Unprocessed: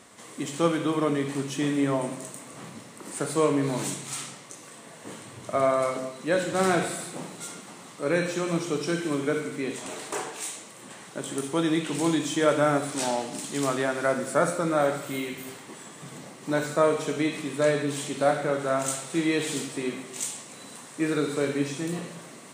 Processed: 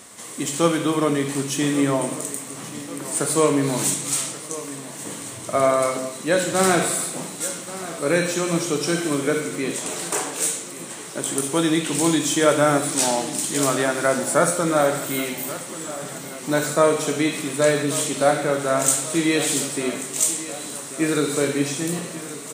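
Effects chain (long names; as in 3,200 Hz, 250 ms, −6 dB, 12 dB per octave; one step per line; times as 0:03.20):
high-shelf EQ 6,000 Hz +11.5 dB
on a send: repeating echo 1,135 ms, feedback 58%, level −15.5 dB
on the sum: level +4.5 dB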